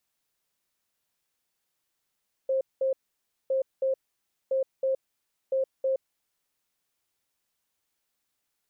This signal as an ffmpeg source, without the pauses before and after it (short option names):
-f lavfi -i "aevalsrc='0.075*sin(2*PI*531*t)*clip(min(mod(mod(t,1.01),0.32),0.12-mod(mod(t,1.01),0.32))/0.005,0,1)*lt(mod(t,1.01),0.64)':d=4.04:s=44100"